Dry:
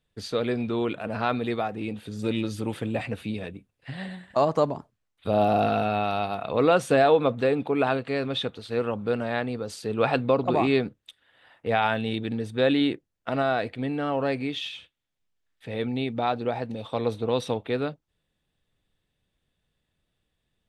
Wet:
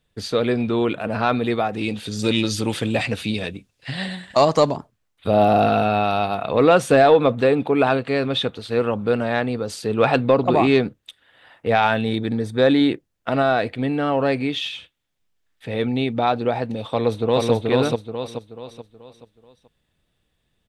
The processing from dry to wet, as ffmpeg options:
-filter_complex "[0:a]asettb=1/sr,asplit=3[a][b][c];[a]atrim=end=1.734[d];[b]atrim=start=1.73:end=4.76,asetpts=PTS-STARTPTS,afade=t=in:d=0.004:c=qsin,afade=t=out:st=3.026:d=0.004:c=qsin,equalizer=f=5.4k:w=0.63:g=11.5[e];[c]atrim=start=4.756[f];[d][e]acrossfade=d=0.004:c1=hsin:c2=qsin[g];[g][f]acrossfade=d=0.004:c1=qsin:c2=hsin,asettb=1/sr,asplit=3[h][i][j];[h]atrim=end=12.044[k];[i]atrim=start=12.04:end=12.89,asetpts=PTS-STARTPTS,afade=t=in:d=0.004:c=qsin,afade=t=out:st=0.846:d=0.004:c=qsin,equalizer=f=2.8k:w=7:g=-14.5[l];[j]atrim=start=12.886[m];[k][l]acrossfade=d=0.004:c1=hsin:c2=qsin[n];[n][m]acrossfade=d=0.004:c1=qsin:c2=hsin,asplit=2[o][p];[p]afade=t=in:st=16.9:d=0.01,afade=t=out:st=17.52:d=0.01,aecho=0:1:430|860|1290|1720|2150:0.841395|0.336558|0.134623|0.0538493|0.0215397[q];[o][q]amix=inputs=2:normalize=0,acontrast=62"

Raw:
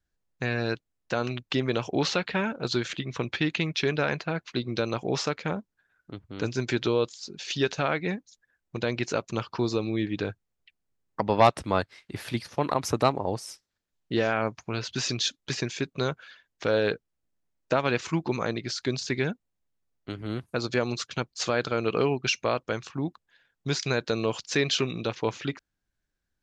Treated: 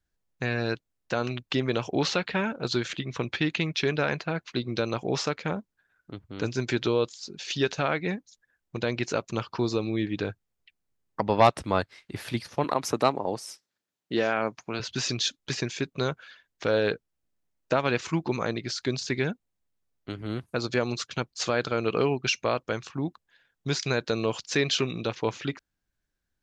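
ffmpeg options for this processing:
-filter_complex "[0:a]asettb=1/sr,asplit=3[a][b][c];[a]atrim=end=12.644[d];[b]atrim=start=12.64:end=14.8,asetpts=PTS-STARTPTS,afade=t=in:d=0.004:c=qsin,afade=t=out:st=2.156:d=0.004:c=qsin,highpass=170[e];[c]atrim=start=14.796[f];[d][e]acrossfade=d=0.004:c1=hsin:c2=qsin[g];[g][f]acrossfade=d=0.004:c1=qsin:c2=hsin"

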